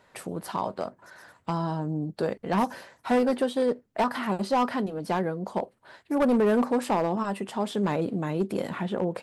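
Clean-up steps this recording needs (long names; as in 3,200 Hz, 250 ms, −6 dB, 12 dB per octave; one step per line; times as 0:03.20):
clipped peaks rebuilt −18 dBFS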